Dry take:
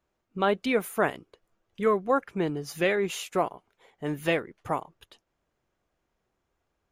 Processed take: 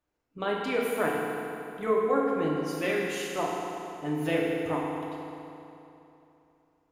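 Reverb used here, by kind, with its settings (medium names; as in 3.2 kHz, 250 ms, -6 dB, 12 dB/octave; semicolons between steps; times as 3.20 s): FDN reverb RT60 3 s, high-frequency decay 0.8×, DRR -3.5 dB; trim -6.5 dB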